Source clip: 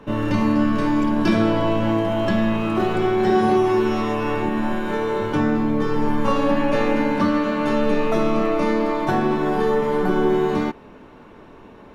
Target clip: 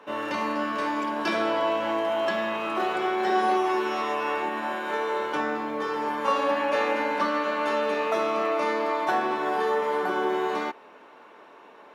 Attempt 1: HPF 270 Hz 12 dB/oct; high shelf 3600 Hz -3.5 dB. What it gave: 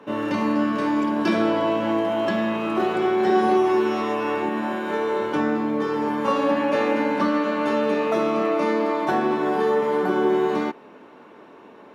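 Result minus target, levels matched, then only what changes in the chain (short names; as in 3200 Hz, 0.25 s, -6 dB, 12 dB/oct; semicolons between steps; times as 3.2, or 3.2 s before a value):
250 Hz band +6.0 dB
change: HPF 590 Hz 12 dB/oct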